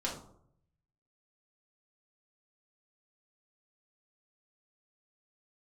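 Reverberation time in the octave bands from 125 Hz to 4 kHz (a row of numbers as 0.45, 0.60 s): 1.2, 0.75, 0.70, 0.65, 0.35, 0.35 s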